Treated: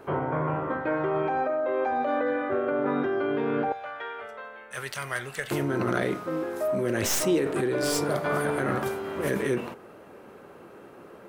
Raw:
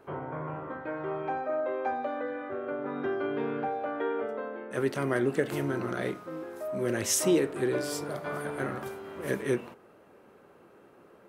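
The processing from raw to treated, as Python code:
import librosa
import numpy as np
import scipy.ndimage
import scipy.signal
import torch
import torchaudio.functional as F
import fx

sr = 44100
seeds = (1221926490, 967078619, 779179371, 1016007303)

p1 = fx.tracing_dist(x, sr, depth_ms=0.065)
p2 = fx.tone_stack(p1, sr, knobs='10-0-10', at=(3.72, 5.51))
p3 = fx.over_compress(p2, sr, threshold_db=-34.0, ratio=-0.5)
y = p2 + (p3 * librosa.db_to_amplitude(2.0))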